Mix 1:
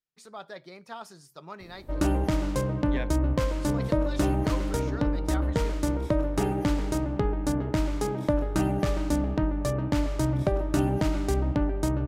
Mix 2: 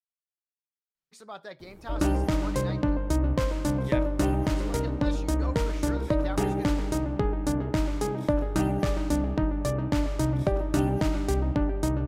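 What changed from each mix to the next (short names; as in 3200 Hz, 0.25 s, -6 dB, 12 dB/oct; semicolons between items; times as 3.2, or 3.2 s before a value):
speech: entry +0.95 s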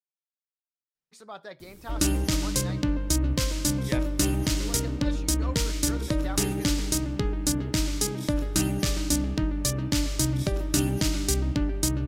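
background: add EQ curve 280 Hz 0 dB, 760 Hz -9 dB, 5100 Hz +14 dB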